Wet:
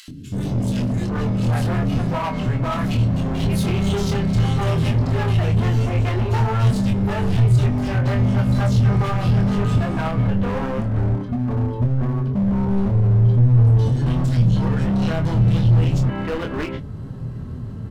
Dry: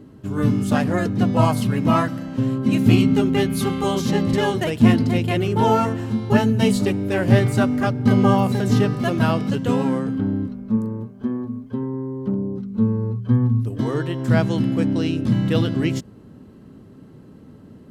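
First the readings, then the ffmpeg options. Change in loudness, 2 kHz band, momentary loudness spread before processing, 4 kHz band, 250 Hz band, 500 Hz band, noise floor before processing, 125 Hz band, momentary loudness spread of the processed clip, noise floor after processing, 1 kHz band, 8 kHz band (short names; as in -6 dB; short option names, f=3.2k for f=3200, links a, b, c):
+0.5 dB, -2.5 dB, 10 LU, -2.5 dB, -3.0 dB, -4.0 dB, -45 dBFS, +5.0 dB, 8 LU, -31 dBFS, -3.0 dB, n/a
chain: -filter_complex "[0:a]highshelf=f=9.5k:g=-11,acrossover=split=300|2600[a][b][c];[a]adelay=80[d];[b]adelay=770[e];[d][e][c]amix=inputs=3:normalize=0,asplit=2[f][g];[g]acompressor=threshold=-25dB:ratio=6,volume=0.5dB[h];[f][h]amix=inputs=2:normalize=0,alimiter=limit=-13.5dB:level=0:latency=1:release=107,acompressor=mode=upward:threshold=-33dB:ratio=2.5,flanger=delay=6.5:depth=6:regen=74:speed=0.18:shape=triangular,volume=27dB,asoftclip=hard,volume=-27dB,asplit=2[i][j];[j]adelay=25,volume=-5.5dB[k];[i][k]amix=inputs=2:normalize=0,asubboost=boost=5:cutoff=120,volume=6dB"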